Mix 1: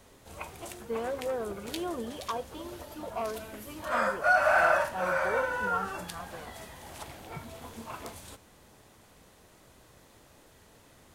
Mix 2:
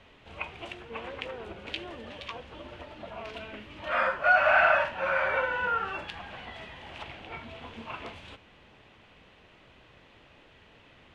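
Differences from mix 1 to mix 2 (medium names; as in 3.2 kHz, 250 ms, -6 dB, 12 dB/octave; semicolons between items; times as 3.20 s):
speech -10.0 dB; master: add resonant low-pass 2.8 kHz, resonance Q 3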